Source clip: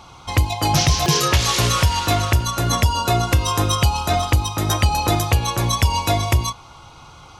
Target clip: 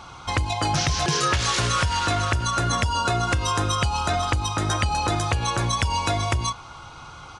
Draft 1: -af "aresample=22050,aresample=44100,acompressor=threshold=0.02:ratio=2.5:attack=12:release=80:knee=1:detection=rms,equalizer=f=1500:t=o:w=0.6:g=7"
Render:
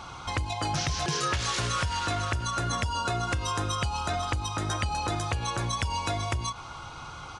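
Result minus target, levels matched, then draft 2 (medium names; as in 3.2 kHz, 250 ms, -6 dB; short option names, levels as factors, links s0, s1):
compression: peak gain reduction +6.5 dB
-af "aresample=22050,aresample=44100,acompressor=threshold=0.0668:ratio=2.5:attack=12:release=80:knee=1:detection=rms,equalizer=f=1500:t=o:w=0.6:g=7"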